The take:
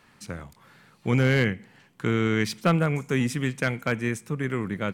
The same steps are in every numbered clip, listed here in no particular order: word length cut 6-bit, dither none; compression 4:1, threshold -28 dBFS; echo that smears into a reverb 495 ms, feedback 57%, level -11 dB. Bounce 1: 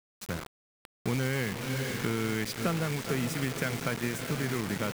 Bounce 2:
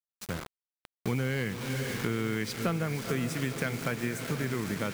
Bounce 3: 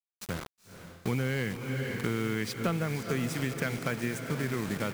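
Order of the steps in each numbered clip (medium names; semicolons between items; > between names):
echo that smears into a reverb > compression > word length cut; echo that smears into a reverb > word length cut > compression; word length cut > echo that smears into a reverb > compression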